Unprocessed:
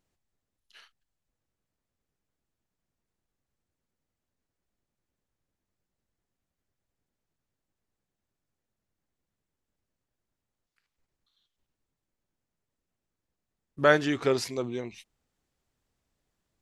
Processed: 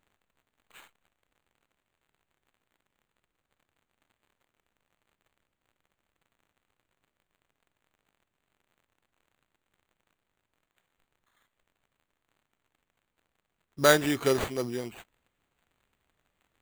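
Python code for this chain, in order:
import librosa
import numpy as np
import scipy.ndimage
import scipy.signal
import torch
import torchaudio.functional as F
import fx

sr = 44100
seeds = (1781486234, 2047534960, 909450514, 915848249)

y = fx.high_shelf(x, sr, hz=5200.0, db=6.5)
y = fx.dmg_crackle(y, sr, seeds[0], per_s=300.0, level_db=-60.0)
y = fx.sample_hold(y, sr, seeds[1], rate_hz=5300.0, jitter_pct=0)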